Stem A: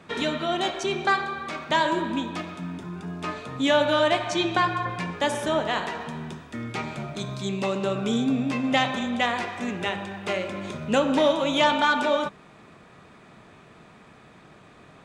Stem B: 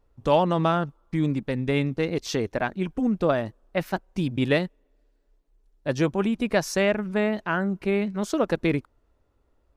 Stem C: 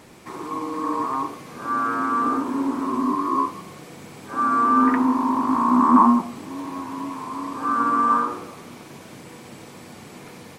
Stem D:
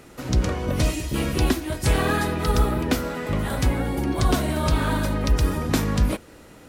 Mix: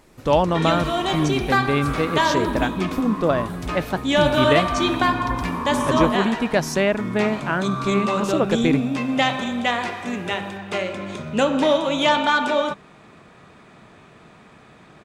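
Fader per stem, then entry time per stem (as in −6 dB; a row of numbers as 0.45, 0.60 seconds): +2.5, +2.5, −8.5, −11.5 decibels; 0.45, 0.00, 0.00, 0.00 seconds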